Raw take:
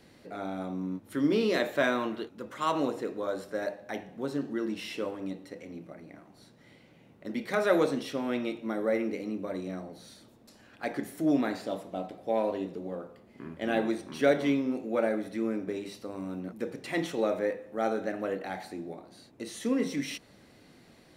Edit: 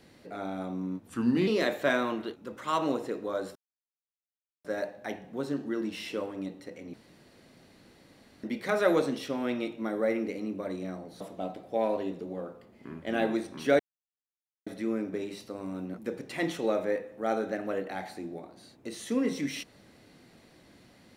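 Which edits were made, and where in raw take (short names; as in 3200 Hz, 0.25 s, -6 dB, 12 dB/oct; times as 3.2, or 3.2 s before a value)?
1.07–1.41 speed 84%
3.49 insert silence 1.09 s
5.78–7.28 room tone
10.05–11.75 cut
14.34–15.21 mute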